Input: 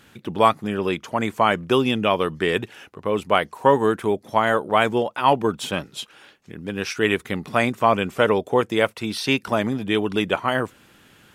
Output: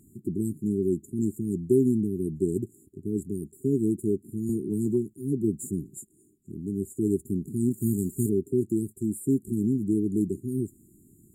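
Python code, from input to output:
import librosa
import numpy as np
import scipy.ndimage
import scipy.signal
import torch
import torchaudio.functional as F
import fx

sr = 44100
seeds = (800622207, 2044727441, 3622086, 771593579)

y = fx.envelope_flatten(x, sr, power=0.6, at=(7.7, 8.28), fade=0.02)
y = fx.brickwall_bandstop(y, sr, low_hz=410.0, high_hz=6800.0)
y = fx.band_squash(y, sr, depth_pct=70, at=(4.49, 5.14))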